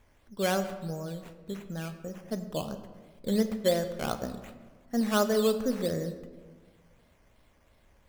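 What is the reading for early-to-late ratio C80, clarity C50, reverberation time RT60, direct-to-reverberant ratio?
12.0 dB, 10.5 dB, 1.5 s, 8.5 dB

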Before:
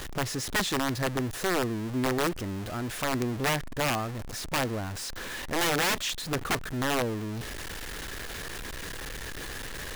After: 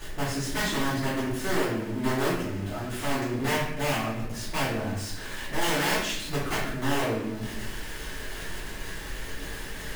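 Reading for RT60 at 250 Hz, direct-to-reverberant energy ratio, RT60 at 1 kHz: 1.2 s, -13.0 dB, 0.70 s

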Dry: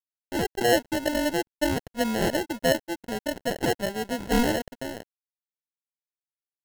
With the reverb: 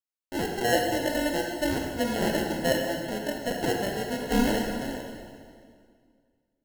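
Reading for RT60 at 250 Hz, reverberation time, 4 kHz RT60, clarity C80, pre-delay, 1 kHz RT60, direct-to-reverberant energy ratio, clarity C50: 2.4 s, 2.1 s, 1.8 s, 3.5 dB, 23 ms, 2.0 s, 1.0 dB, 2.5 dB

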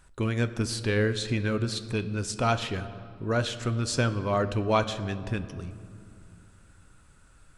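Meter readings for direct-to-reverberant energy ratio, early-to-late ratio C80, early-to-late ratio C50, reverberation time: 10.0 dB, 14.0 dB, 13.0 dB, 2.4 s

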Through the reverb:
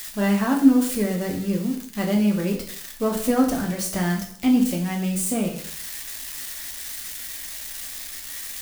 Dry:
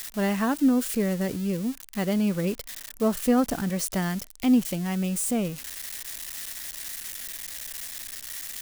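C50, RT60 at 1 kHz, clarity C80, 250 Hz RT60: 8.0 dB, 0.60 s, 11.5 dB, 0.60 s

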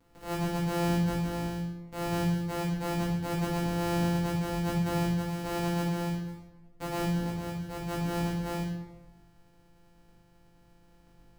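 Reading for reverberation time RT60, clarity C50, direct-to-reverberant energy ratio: 1.1 s, 0.5 dB, -8.5 dB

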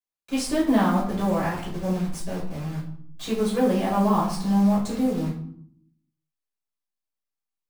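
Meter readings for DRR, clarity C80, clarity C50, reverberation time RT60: -6.5 dB, 10.0 dB, 6.0 dB, 0.65 s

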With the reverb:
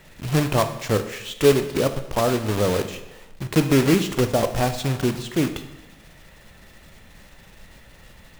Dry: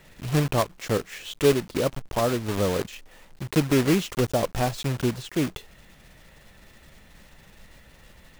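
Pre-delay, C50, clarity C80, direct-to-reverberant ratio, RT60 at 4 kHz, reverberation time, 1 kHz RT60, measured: 16 ms, 10.5 dB, 12.5 dB, 8.5 dB, 0.85 s, 1.0 s, 1.0 s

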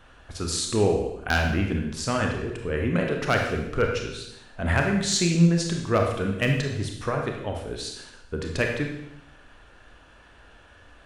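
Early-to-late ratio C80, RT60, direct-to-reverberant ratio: 6.5 dB, 0.85 s, 1.5 dB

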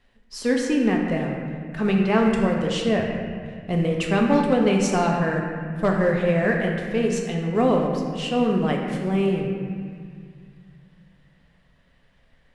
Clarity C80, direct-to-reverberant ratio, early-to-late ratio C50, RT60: 3.5 dB, 0.0 dB, 2.0 dB, 2.1 s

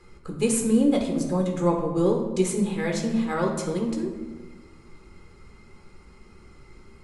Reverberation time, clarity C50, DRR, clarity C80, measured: 1.3 s, 5.5 dB, 1.0 dB, 8.0 dB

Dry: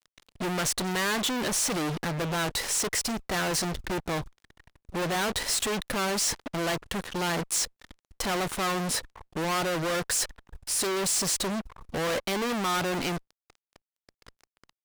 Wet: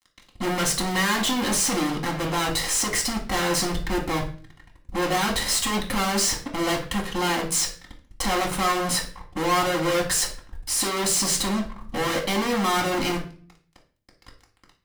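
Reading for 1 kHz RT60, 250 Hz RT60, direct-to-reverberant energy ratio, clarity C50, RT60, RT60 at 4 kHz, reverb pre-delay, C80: 0.40 s, 0.65 s, -1.0 dB, 10.0 dB, 0.45 s, 0.40 s, 4 ms, 14.5 dB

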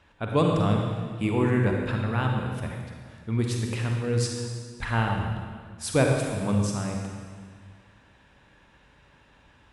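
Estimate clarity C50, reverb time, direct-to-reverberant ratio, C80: 1.5 dB, 1.8 s, 1.0 dB, 3.0 dB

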